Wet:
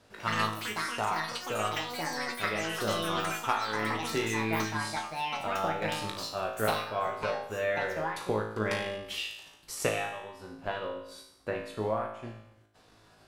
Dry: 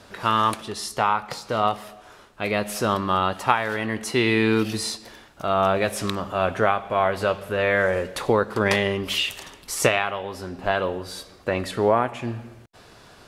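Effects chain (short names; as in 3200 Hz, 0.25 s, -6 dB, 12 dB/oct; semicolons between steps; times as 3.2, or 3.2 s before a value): transient shaper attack +4 dB, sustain -7 dB; resonator 54 Hz, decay 0.75 s, harmonics all, mix 90%; echoes that change speed 0.106 s, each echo +7 st, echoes 3; gain -1.5 dB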